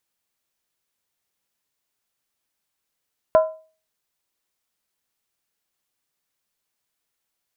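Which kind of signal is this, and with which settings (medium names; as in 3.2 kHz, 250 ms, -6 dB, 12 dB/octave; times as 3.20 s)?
skin hit, lowest mode 635 Hz, decay 0.38 s, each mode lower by 9 dB, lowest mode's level -8 dB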